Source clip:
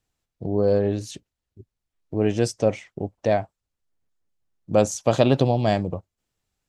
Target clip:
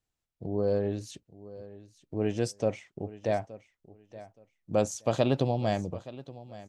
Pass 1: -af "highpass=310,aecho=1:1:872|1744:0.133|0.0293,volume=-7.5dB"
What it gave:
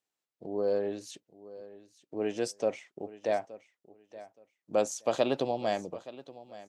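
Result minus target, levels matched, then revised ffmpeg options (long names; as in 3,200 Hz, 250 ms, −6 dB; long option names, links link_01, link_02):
250 Hz band −3.0 dB
-af "aecho=1:1:872|1744:0.133|0.0293,volume=-7.5dB"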